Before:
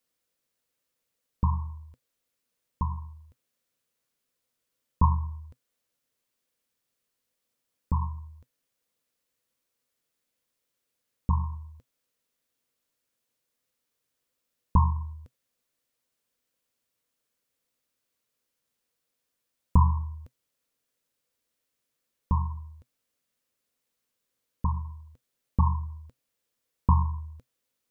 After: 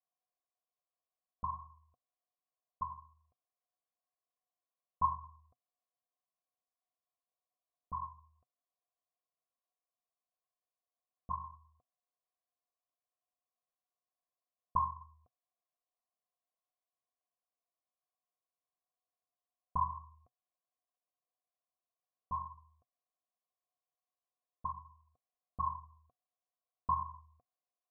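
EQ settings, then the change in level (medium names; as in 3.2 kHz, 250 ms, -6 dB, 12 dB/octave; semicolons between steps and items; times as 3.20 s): cascade formant filter a; Butterworth band-stop 870 Hz, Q 4.6; dynamic bell 850 Hz, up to +4 dB, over -55 dBFS, Q 2.5; +4.0 dB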